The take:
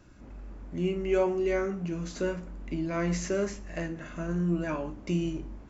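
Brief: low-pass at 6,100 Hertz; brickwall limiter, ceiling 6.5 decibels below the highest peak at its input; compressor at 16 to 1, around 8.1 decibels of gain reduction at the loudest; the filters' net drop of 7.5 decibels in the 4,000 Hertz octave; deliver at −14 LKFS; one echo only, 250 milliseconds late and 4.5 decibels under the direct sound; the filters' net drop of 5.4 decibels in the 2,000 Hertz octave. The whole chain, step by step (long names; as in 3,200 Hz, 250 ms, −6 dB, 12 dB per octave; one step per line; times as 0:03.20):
low-pass filter 6,100 Hz
parametric band 2,000 Hz −5.5 dB
parametric band 4,000 Hz −8 dB
downward compressor 16 to 1, threshold −29 dBFS
brickwall limiter −28.5 dBFS
single-tap delay 250 ms −4.5 dB
level +22 dB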